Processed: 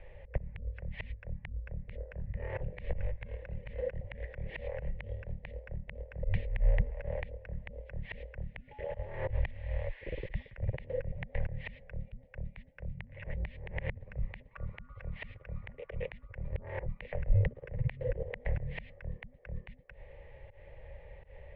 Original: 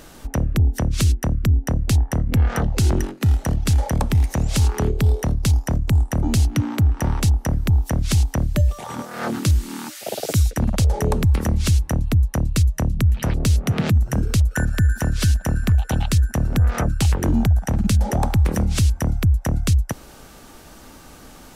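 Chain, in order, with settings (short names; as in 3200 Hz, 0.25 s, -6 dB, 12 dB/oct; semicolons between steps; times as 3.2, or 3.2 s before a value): vowel filter u; auto swell 0.11 s; mistuned SSB -330 Hz 170–3400 Hz; gain +7 dB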